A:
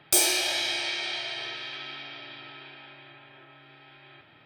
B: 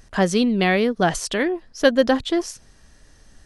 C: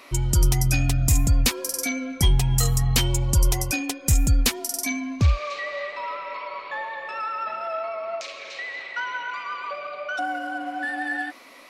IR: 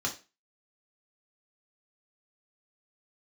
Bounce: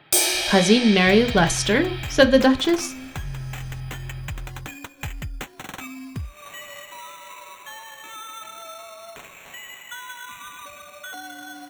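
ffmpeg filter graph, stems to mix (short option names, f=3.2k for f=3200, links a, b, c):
-filter_complex "[0:a]volume=2.5dB[a];[1:a]adelay=350,volume=1.5dB,asplit=2[b][c];[c]volume=-11dB[d];[2:a]equalizer=f=125:t=o:w=1:g=8,equalizer=f=500:t=o:w=1:g=-8,equalizer=f=8k:t=o:w=1:g=7,acompressor=threshold=-27dB:ratio=3,acrusher=samples=9:mix=1:aa=0.000001,adelay=950,volume=-6dB,asplit=2[e][f];[f]volume=-22dB[g];[3:a]atrim=start_sample=2205[h];[d][g]amix=inputs=2:normalize=0[i];[i][h]afir=irnorm=-1:irlink=0[j];[a][b][e][j]amix=inputs=4:normalize=0"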